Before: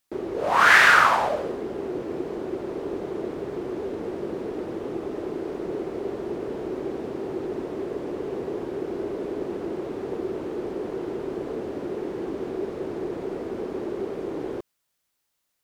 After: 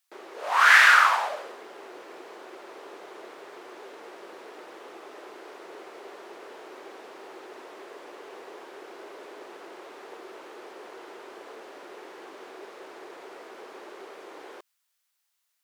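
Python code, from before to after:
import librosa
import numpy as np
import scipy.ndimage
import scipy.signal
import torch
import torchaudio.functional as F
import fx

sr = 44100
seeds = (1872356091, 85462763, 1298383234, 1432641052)

y = scipy.signal.sosfilt(scipy.signal.butter(2, 980.0, 'highpass', fs=sr, output='sos'), x)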